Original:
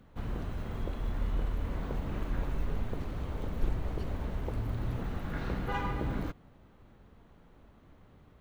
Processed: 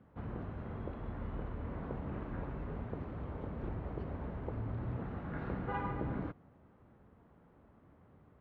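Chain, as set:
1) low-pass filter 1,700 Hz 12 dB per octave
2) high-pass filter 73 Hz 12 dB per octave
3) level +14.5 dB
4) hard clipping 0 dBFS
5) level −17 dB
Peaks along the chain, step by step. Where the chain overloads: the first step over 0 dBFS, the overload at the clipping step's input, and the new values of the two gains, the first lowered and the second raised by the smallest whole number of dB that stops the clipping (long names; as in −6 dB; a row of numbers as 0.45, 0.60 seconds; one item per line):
−17.5, −20.5, −6.0, −6.0, −23.0 dBFS
no step passes full scale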